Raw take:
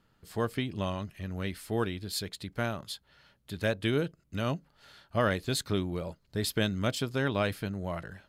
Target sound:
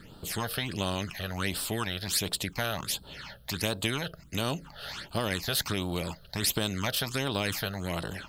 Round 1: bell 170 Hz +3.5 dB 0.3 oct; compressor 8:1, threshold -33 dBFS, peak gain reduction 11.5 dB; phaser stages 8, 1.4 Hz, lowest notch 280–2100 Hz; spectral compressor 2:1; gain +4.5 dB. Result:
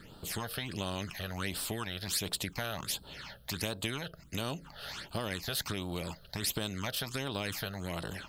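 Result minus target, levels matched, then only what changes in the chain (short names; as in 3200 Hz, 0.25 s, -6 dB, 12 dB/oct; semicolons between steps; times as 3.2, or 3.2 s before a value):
compressor: peak gain reduction +5.5 dB
change: compressor 8:1, threshold -26.5 dBFS, peak gain reduction 6 dB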